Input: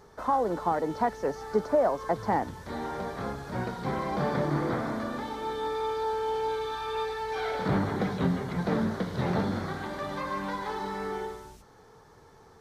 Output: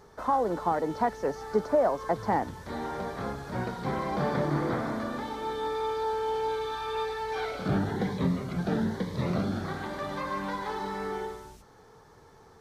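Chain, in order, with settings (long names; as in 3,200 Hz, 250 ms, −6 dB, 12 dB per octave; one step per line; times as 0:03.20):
0:07.45–0:09.65: phaser whose notches keep moving one way rising 1.1 Hz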